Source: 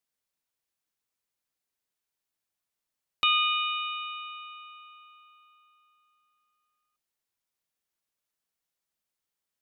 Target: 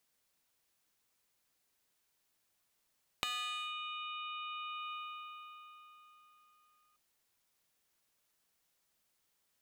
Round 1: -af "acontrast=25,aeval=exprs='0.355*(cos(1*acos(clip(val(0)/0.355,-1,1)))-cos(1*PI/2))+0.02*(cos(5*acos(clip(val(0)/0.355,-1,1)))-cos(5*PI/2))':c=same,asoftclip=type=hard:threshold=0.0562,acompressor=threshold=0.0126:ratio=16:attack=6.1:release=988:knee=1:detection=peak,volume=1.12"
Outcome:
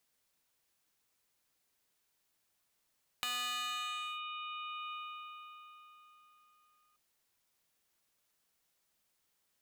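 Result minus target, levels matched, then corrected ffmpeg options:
hard clipper: distortion +8 dB
-af "acontrast=25,aeval=exprs='0.355*(cos(1*acos(clip(val(0)/0.355,-1,1)))-cos(1*PI/2))+0.02*(cos(5*acos(clip(val(0)/0.355,-1,1)))-cos(5*PI/2))':c=same,asoftclip=type=hard:threshold=0.141,acompressor=threshold=0.0126:ratio=16:attack=6.1:release=988:knee=1:detection=peak,volume=1.12"

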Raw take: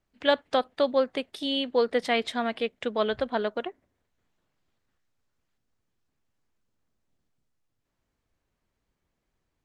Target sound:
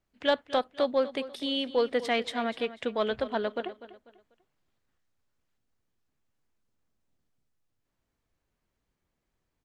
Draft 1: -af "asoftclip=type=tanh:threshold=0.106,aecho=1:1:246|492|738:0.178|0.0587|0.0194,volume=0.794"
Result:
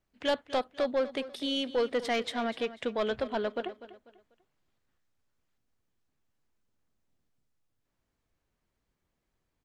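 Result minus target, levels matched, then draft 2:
saturation: distortion +14 dB
-af "asoftclip=type=tanh:threshold=0.355,aecho=1:1:246|492|738:0.178|0.0587|0.0194,volume=0.794"

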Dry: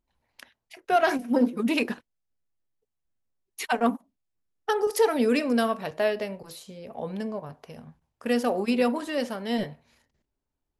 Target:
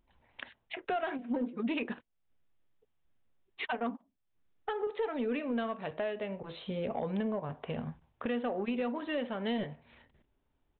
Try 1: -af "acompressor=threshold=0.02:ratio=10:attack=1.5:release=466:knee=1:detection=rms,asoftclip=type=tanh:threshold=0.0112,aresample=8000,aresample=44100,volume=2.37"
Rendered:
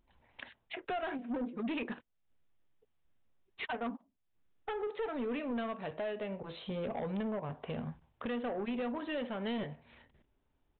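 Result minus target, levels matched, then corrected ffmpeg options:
saturation: distortion +11 dB
-af "acompressor=threshold=0.02:ratio=10:attack=1.5:release=466:knee=1:detection=rms,asoftclip=type=tanh:threshold=0.0299,aresample=8000,aresample=44100,volume=2.37"

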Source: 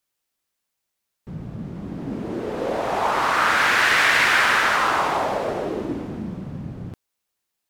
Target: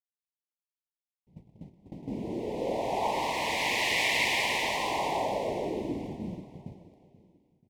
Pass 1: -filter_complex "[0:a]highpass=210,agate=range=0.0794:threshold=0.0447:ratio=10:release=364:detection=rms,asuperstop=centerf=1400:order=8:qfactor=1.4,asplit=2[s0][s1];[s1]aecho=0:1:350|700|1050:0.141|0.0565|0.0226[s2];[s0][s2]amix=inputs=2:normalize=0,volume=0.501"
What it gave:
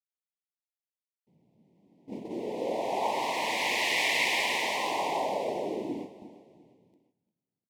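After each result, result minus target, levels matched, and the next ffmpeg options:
echo 133 ms early; 250 Hz band -2.5 dB
-filter_complex "[0:a]highpass=210,agate=range=0.0794:threshold=0.0447:ratio=10:release=364:detection=rms,asuperstop=centerf=1400:order=8:qfactor=1.4,asplit=2[s0][s1];[s1]aecho=0:1:483|966|1449:0.141|0.0565|0.0226[s2];[s0][s2]amix=inputs=2:normalize=0,volume=0.501"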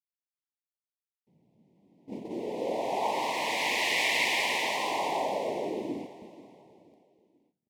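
250 Hz band -2.5 dB
-filter_complex "[0:a]agate=range=0.0794:threshold=0.0447:ratio=10:release=364:detection=rms,asuperstop=centerf=1400:order=8:qfactor=1.4,asplit=2[s0][s1];[s1]aecho=0:1:483|966|1449:0.141|0.0565|0.0226[s2];[s0][s2]amix=inputs=2:normalize=0,volume=0.501"

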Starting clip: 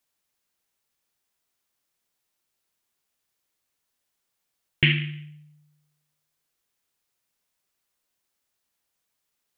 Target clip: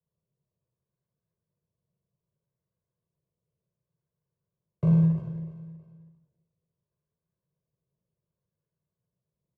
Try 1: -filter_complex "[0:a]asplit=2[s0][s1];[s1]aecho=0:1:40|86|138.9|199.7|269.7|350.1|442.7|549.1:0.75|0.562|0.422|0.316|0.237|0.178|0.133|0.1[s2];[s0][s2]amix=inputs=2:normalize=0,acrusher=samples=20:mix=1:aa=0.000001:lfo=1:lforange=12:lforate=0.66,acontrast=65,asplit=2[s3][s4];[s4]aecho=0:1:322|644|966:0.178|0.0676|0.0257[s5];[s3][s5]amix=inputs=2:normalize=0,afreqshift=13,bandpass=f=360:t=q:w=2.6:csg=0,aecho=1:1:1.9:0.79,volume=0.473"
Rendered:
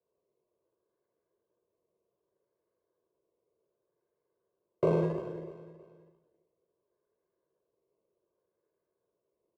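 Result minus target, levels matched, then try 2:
500 Hz band +19.5 dB
-filter_complex "[0:a]asplit=2[s0][s1];[s1]aecho=0:1:40|86|138.9|199.7|269.7|350.1|442.7|549.1:0.75|0.562|0.422|0.316|0.237|0.178|0.133|0.1[s2];[s0][s2]amix=inputs=2:normalize=0,acrusher=samples=20:mix=1:aa=0.000001:lfo=1:lforange=12:lforate=0.66,acontrast=65,asplit=2[s3][s4];[s4]aecho=0:1:322|644|966:0.178|0.0676|0.0257[s5];[s3][s5]amix=inputs=2:normalize=0,afreqshift=13,bandpass=f=150:t=q:w=2.6:csg=0,aecho=1:1:1.9:0.79,volume=0.473"

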